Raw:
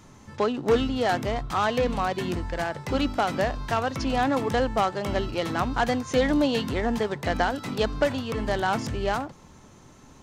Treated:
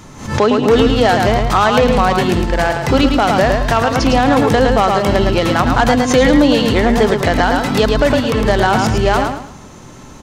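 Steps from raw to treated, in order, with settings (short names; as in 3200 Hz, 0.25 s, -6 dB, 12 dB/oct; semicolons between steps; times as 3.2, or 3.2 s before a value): feedback echo 0.109 s, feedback 31%, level -6 dB; maximiser +14 dB; backwards sustainer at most 100 dB/s; gain -1 dB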